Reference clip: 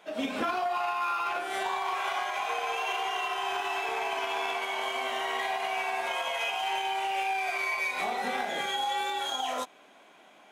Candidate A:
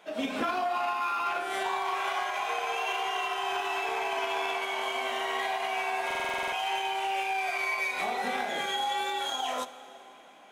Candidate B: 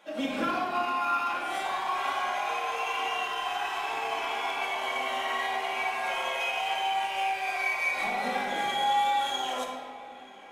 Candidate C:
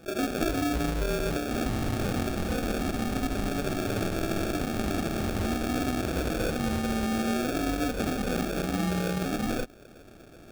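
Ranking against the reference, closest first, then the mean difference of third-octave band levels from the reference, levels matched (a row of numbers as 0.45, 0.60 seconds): A, B, C; 1.0, 3.0, 12.0 decibels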